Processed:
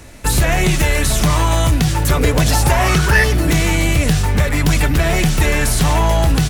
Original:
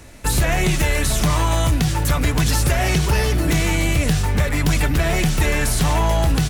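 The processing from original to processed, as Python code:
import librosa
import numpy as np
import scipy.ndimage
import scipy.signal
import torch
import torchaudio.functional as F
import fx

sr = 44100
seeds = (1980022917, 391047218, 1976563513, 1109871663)

y = fx.peak_eq(x, sr, hz=fx.line((2.1, 370.0), (3.23, 1900.0)), db=15.0, octaves=0.35, at=(2.1, 3.23), fade=0.02)
y = F.gain(torch.from_numpy(y), 3.5).numpy()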